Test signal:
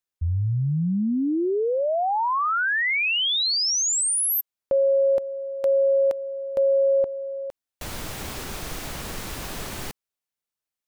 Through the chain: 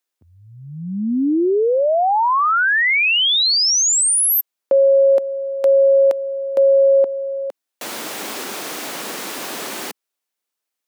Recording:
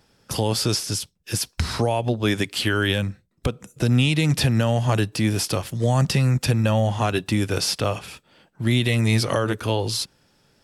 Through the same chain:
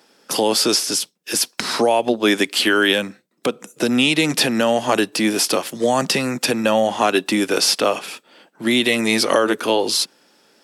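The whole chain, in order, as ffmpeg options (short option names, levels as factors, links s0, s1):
-af "highpass=f=240:w=0.5412,highpass=f=240:w=1.3066,volume=2.24"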